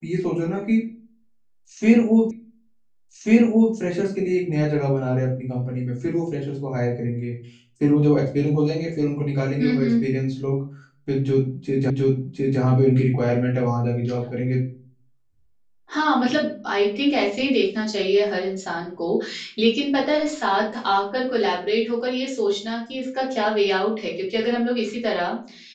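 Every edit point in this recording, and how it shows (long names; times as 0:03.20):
0:02.31: the same again, the last 1.44 s
0:11.90: the same again, the last 0.71 s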